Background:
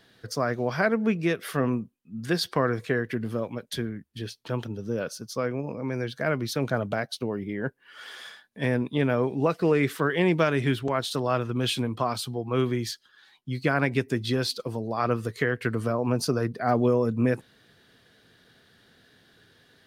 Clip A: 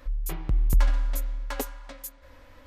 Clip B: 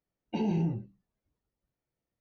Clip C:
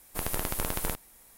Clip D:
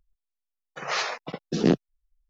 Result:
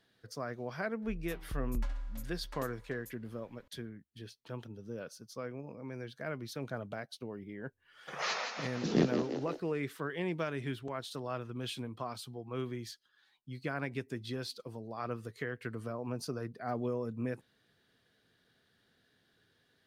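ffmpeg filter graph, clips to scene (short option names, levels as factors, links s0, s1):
-filter_complex "[0:a]volume=0.224[s0];[4:a]asplit=9[s1][s2][s3][s4][s5][s6][s7][s8][s9];[s2]adelay=170,afreqshift=41,volume=0.473[s10];[s3]adelay=340,afreqshift=82,volume=0.279[s11];[s4]adelay=510,afreqshift=123,volume=0.164[s12];[s5]adelay=680,afreqshift=164,volume=0.0977[s13];[s6]adelay=850,afreqshift=205,volume=0.0575[s14];[s7]adelay=1020,afreqshift=246,volume=0.0339[s15];[s8]adelay=1190,afreqshift=287,volume=0.02[s16];[s9]adelay=1360,afreqshift=328,volume=0.0117[s17];[s1][s10][s11][s12][s13][s14][s15][s16][s17]amix=inputs=9:normalize=0[s18];[1:a]atrim=end=2.66,asetpts=PTS-STARTPTS,volume=0.178,afade=t=in:d=0.004:c=hsin,afade=t=out:st=2.656:d=0.004:c=hsin,adelay=1020[s19];[s18]atrim=end=2.29,asetpts=PTS-STARTPTS,volume=0.422,afade=t=in:d=0.004:c=hsin,afade=t=out:st=2.286:d=0.004:c=hsin,adelay=7310[s20];[s0][s19][s20]amix=inputs=3:normalize=0"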